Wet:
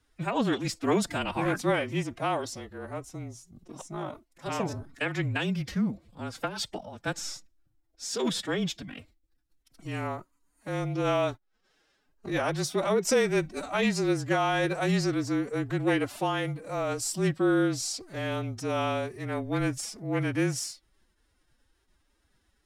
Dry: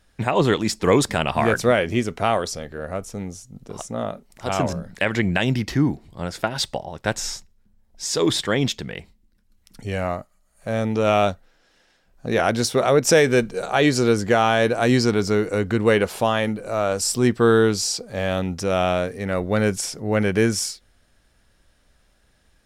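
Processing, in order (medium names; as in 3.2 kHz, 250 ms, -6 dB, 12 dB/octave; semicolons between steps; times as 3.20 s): frequency shift -19 Hz; formant-preserving pitch shift +8.5 st; trim -8 dB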